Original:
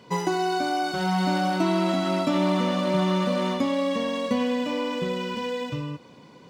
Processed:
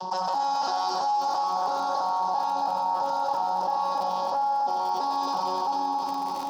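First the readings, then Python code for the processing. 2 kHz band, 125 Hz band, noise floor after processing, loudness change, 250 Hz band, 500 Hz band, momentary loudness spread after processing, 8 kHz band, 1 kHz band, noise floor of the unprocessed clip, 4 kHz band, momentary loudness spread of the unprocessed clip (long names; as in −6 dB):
−13.5 dB, below −20 dB, −30 dBFS, −1.5 dB, −17.5 dB, −8.5 dB, 2 LU, can't be measured, +6.0 dB, −50 dBFS, −5.0 dB, 7 LU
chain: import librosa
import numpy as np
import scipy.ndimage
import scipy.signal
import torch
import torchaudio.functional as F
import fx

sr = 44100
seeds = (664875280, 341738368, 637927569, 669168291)

p1 = fx.vocoder_arp(x, sr, chord='bare fifth', root=54, every_ms=333)
p2 = 10.0 ** (-23.5 / 20.0) * np.tanh(p1 / 10.0 ** (-23.5 / 20.0))
p3 = p1 + (p2 * librosa.db_to_amplitude(-11.5))
p4 = fx.rider(p3, sr, range_db=4, speed_s=0.5)
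p5 = fx.fold_sine(p4, sr, drive_db=15, ceiling_db=-12.0)
p6 = fx.double_bandpass(p5, sr, hz=2100.0, octaves=2.6)
p7 = fx.dmg_crackle(p6, sr, seeds[0], per_s=44.0, level_db=-34.0)
p8 = fx.echo_heads(p7, sr, ms=91, heads='first and third', feedback_pct=67, wet_db=-7)
p9 = fx.env_flatten(p8, sr, amount_pct=70)
y = p9 * librosa.db_to_amplitude(-8.0)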